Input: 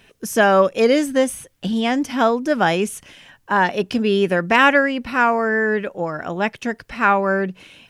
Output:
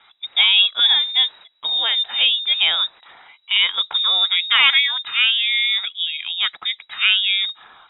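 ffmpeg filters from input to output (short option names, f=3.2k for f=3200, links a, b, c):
-af "aeval=exprs='0.841*(cos(1*acos(clip(val(0)/0.841,-1,1)))-cos(1*PI/2))+0.015*(cos(2*acos(clip(val(0)/0.841,-1,1)))-cos(2*PI/2))+0.0168*(cos(5*acos(clip(val(0)/0.841,-1,1)))-cos(5*PI/2))':c=same,lowpass=f=3.3k:t=q:w=0.5098,lowpass=f=3.3k:t=q:w=0.6013,lowpass=f=3.3k:t=q:w=0.9,lowpass=f=3.3k:t=q:w=2.563,afreqshift=-3900,volume=-1dB"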